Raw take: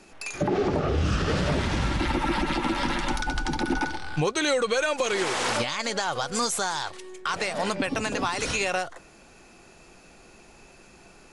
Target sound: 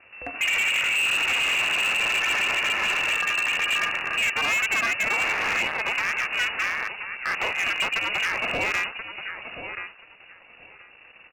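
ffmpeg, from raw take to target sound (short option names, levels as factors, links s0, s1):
-filter_complex "[0:a]acrusher=bits=6:dc=4:mix=0:aa=0.000001,aeval=exprs='val(0)*sin(2*PI*220*n/s)':c=same,lowpass=f=2500:t=q:w=0.5098,lowpass=f=2500:t=q:w=0.6013,lowpass=f=2500:t=q:w=0.9,lowpass=f=2500:t=q:w=2.563,afreqshift=-2900,asplit=2[s0][s1];[s1]aecho=0:1:1030|2060:0.282|0.0423[s2];[s0][s2]amix=inputs=2:normalize=0,volume=21.1,asoftclip=hard,volume=0.0473,volume=2.11"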